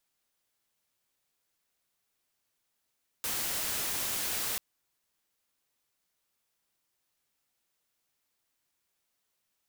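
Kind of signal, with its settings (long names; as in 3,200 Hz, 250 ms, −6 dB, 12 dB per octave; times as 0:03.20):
noise white, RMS −33 dBFS 1.34 s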